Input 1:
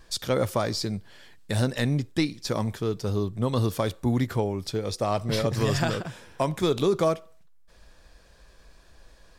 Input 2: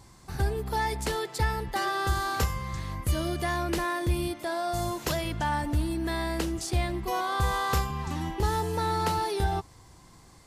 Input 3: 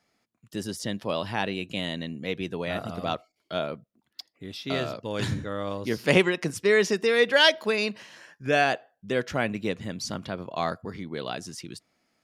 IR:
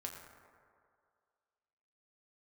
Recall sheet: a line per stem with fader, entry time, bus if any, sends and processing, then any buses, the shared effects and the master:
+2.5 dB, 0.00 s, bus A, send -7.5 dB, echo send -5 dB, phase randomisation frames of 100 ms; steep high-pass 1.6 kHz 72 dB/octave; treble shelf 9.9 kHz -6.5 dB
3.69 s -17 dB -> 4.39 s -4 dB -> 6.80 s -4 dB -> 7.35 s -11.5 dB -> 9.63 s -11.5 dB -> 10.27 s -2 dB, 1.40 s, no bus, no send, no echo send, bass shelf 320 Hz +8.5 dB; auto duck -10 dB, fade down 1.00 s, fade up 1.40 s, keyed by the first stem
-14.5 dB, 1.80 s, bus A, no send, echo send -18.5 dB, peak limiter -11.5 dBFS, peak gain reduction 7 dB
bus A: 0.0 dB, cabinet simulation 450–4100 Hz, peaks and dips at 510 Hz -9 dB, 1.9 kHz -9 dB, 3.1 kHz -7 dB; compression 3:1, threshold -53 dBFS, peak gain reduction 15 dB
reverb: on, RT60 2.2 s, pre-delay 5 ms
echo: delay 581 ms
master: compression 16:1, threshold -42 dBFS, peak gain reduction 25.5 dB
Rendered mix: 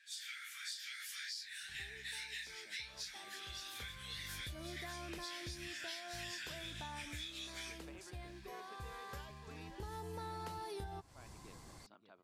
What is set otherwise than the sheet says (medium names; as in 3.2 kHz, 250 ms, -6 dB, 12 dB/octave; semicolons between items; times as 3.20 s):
stem 2: missing bass shelf 320 Hz +8.5 dB; stem 3 -14.5 dB -> -24.0 dB